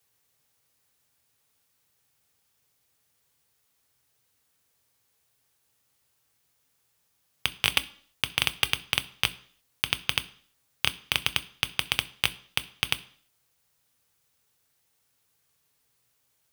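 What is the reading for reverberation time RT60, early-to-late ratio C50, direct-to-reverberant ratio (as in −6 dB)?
0.55 s, 19.5 dB, 11.0 dB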